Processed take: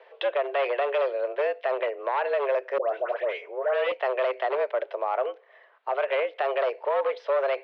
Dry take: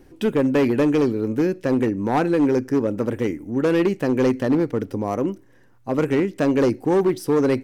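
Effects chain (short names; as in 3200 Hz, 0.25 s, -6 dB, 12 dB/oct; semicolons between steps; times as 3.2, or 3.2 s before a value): in parallel at 0 dB: compressor, threshold -30 dBFS, peak gain reduction 13.5 dB; on the sum: mistuned SSB +130 Hz 440–3500 Hz; limiter -17 dBFS, peak gain reduction 8.5 dB; 2.78–3.92 dispersion highs, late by 0.12 s, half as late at 1400 Hz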